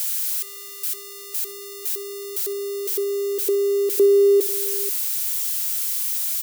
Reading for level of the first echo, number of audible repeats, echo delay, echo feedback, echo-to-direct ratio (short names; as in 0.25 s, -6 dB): -18.0 dB, 2, 66 ms, no steady repeat, -15.0 dB